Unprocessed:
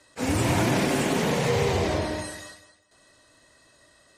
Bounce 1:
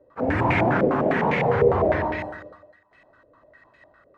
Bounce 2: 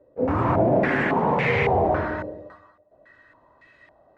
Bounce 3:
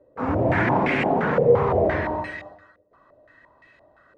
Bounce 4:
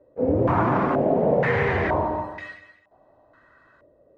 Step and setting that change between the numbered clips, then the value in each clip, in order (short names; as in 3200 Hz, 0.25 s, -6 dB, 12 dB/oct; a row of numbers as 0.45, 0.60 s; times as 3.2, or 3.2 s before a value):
stepped low-pass, rate: 9.9, 3.6, 5.8, 2.1 Hz